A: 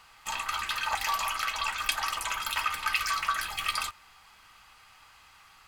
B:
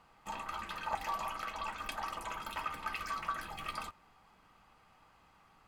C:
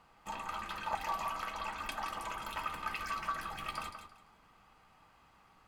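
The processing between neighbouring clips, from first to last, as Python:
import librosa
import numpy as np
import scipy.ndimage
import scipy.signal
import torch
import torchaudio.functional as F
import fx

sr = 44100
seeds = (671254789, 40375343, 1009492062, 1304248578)

y1 = fx.curve_eq(x, sr, hz=(100.0, 180.0, 590.0, 1500.0, 4500.0), db=(0, 9, 4, -7, -13))
y1 = y1 * 10.0 ** (-3.5 / 20.0)
y2 = fx.echo_feedback(y1, sr, ms=170, feedback_pct=24, wet_db=-8.5)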